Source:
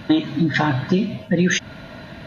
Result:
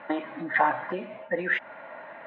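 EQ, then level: speaker cabinet 480–2300 Hz, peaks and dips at 560 Hz +8 dB, 850 Hz +9 dB, 1200 Hz +7 dB, 2000 Hz +6 dB; -6.5 dB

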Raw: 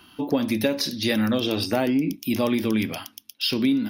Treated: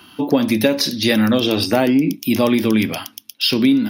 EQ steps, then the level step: HPF 82 Hz; +7.0 dB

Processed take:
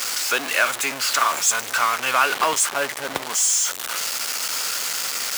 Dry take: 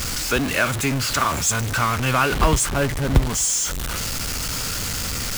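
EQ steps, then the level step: HPF 640 Hz 12 dB/oct; +2.0 dB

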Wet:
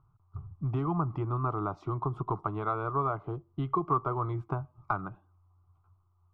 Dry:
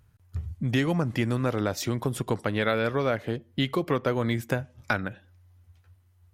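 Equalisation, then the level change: synth low-pass 1200 Hz, resonance Q 6.3; low shelf 93 Hz +9.5 dB; fixed phaser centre 350 Hz, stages 8; -5.5 dB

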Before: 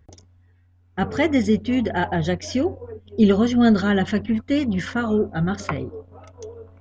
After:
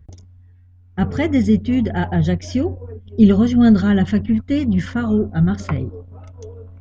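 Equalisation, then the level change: tone controls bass +12 dB, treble -3 dB; high shelf 5300 Hz +4.5 dB; -2.5 dB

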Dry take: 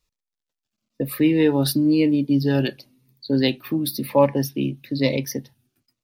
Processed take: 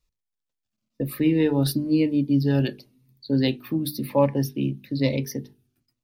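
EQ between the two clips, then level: low shelf 230 Hz +8.5 dB; notches 50/100/150/200/250/300/350/400/450 Hz; -5.0 dB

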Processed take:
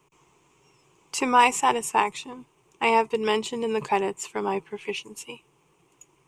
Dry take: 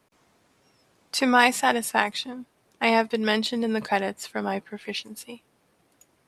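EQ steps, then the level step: ripple EQ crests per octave 0.71, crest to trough 13 dB; dynamic EQ 3400 Hz, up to -6 dB, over -37 dBFS, Q 0.79; 0.0 dB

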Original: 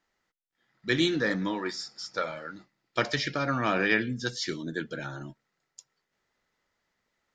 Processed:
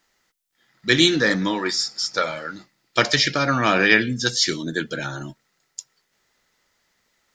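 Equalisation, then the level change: high shelf 3300 Hz +10 dB; +7.0 dB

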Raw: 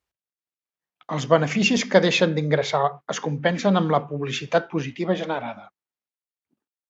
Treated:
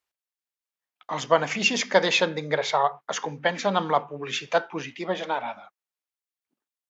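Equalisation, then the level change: low shelf 200 Hz -6.5 dB; low shelf 400 Hz -9 dB; dynamic EQ 900 Hz, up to +6 dB, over -42 dBFS, Q 4.3; 0.0 dB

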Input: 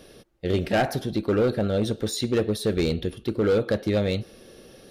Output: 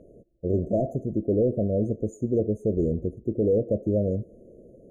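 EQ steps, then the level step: brick-wall FIR band-stop 710–6200 Hz; air absorption 330 m; bell 7000 Hz +9.5 dB 0.65 oct; 0.0 dB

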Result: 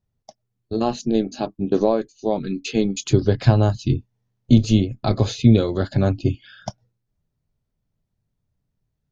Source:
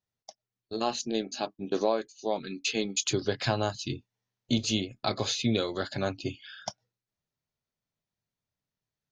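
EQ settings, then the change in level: tilt -4.5 dB/oct; high shelf 4800 Hz +11 dB; +3.5 dB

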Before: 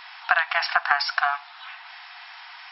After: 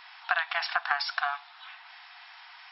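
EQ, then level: dynamic EQ 3600 Hz, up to +7 dB, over -49 dBFS, Q 3.7; -7.0 dB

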